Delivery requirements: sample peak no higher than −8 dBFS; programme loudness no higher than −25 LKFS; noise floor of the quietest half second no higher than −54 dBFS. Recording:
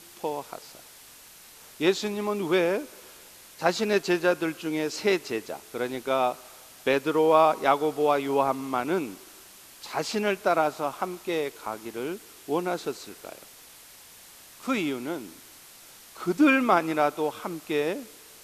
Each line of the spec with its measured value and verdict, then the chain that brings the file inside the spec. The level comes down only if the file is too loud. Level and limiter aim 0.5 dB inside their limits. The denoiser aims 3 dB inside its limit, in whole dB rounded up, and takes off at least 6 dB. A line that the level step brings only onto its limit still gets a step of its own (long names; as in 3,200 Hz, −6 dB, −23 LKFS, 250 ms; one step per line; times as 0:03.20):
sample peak −7.0 dBFS: out of spec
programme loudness −26.5 LKFS: in spec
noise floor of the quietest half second −50 dBFS: out of spec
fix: broadband denoise 7 dB, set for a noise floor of −50 dBFS
brickwall limiter −8.5 dBFS